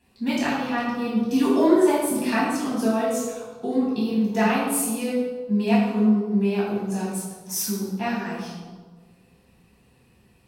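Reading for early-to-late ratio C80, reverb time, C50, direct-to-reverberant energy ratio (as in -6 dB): 2.5 dB, 1.5 s, 0.0 dB, -8.5 dB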